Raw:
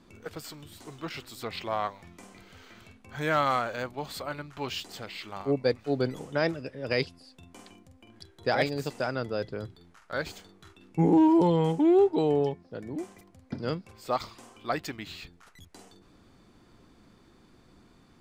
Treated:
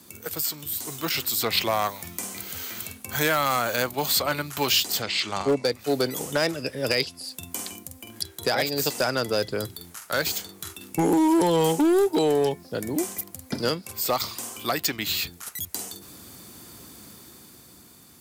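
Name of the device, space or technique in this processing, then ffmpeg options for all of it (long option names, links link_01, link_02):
FM broadcast chain: -filter_complex "[0:a]asettb=1/sr,asplit=3[link_01][link_02][link_03];[link_01]atrim=end=5.024[link_04];[link_02]atrim=start=5.02:end=5.72,asetpts=PTS-STARTPTS,afade=type=in:duration=0.004:curve=qsin,afade=type=out:start_time=0.696:duration=0.004:curve=qsin,lowpass=frequency=7600:width=0.5412,lowpass=frequency=7600:width=1.3066[link_05];[link_03]atrim=start=5.716[link_06];[link_04][link_05]acrossfade=duration=0.004:curve1=hsin:curve2=qsin[link_07];[link_07][link_06]acrossfade=duration=0.004:curve1=qsin:curve2=hsin,highpass=frequency=61:width=0.5412,highpass=frequency=61:width=1.3066,dynaudnorm=framelen=100:gausssize=21:maxgain=6dB,acrossover=split=260|6200[link_08][link_09][link_10];[link_08]acompressor=threshold=-37dB:ratio=4[link_11];[link_09]acompressor=threshold=-21dB:ratio=4[link_12];[link_10]acompressor=threshold=-59dB:ratio=4[link_13];[link_11][link_12][link_13]amix=inputs=3:normalize=0,aemphasis=mode=production:type=50fm,alimiter=limit=-16dB:level=0:latency=1:release=463,asoftclip=type=hard:threshold=-20dB,lowpass=frequency=15000:width=0.5412,lowpass=frequency=15000:width=1.3066,aemphasis=mode=production:type=50fm,volume=4dB"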